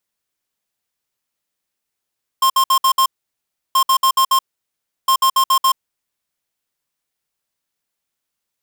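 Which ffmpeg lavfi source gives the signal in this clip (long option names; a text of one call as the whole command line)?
ffmpeg -f lavfi -i "aevalsrc='0.224*(2*lt(mod(1060*t,1),0.5)-1)*clip(min(mod(mod(t,1.33),0.14),0.08-mod(mod(t,1.33),0.14))/0.005,0,1)*lt(mod(t,1.33),0.7)':duration=3.99:sample_rate=44100" out.wav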